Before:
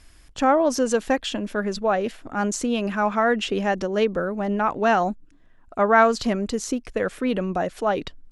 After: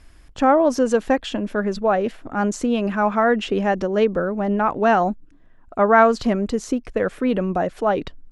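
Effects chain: high shelf 2600 Hz -9 dB; gain +3.5 dB

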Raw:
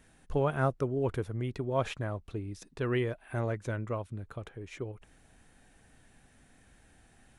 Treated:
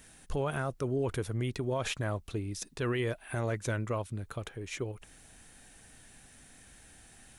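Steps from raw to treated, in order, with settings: high shelf 3000 Hz +11.5 dB; limiter -25.5 dBFS, peak gain reduction 11 dB; gain +2 dB

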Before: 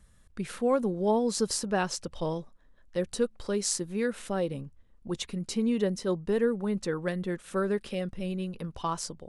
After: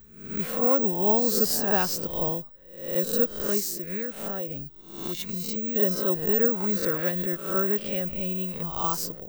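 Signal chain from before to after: spectral swells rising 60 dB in 0.66 s; 3.59–5.76 compressor, threshold -31 dBFS, peak gain reduction 8 dB; careless resampling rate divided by 2×, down filtered, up zero stuff

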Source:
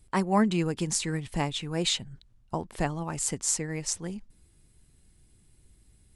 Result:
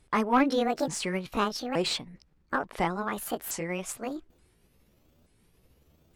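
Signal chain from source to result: repeated pitch sweeps +9.5 st, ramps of 0.877 s; overdrive pedal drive 14 dB, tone 1700 Hz, clips at -11.5 dBFS

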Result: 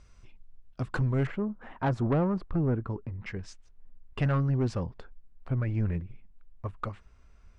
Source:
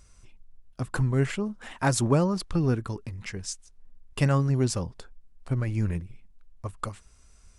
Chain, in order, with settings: LPF 4100 Hz 12 dB/oct, from 1.27 s 1300 Hz, from 3.26 s 2500 Hz; soft clip -20.5 dBFS, distortion -13 dB

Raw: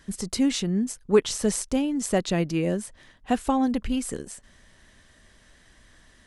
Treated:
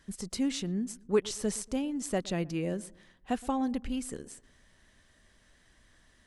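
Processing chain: darkening echo 0.118 s, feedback 42%, low-pass 890 Hz, level -19.5 dB; gain -7.5 dB

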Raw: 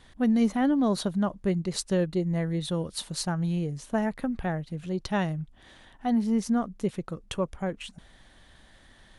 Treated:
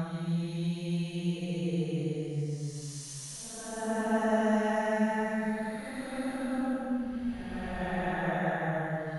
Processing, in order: tilt +1.5 dB/oct; Paulstretch 7.6×, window 0.25 s, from 3.39

